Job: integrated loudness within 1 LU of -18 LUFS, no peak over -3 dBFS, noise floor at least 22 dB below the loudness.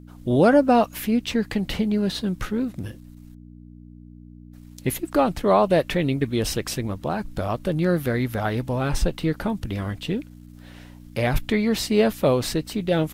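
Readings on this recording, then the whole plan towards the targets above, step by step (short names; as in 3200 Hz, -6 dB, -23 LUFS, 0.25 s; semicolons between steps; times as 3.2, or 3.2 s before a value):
hum 60 Hz; harmonics up to 300 Hz; hum level -42 dBFS; loudness -23.0 LUFS; peak -6.0 dBFS; loudness target -18.0 LUFS
-> de-hum 60 Hz, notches 5; gain +5 dB; limiter -3 dBFS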